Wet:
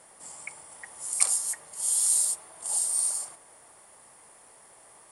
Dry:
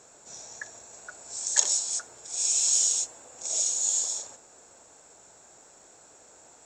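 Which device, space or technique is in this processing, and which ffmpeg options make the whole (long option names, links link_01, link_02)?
nightcore: -af "asetrate=57330,aresample=44100"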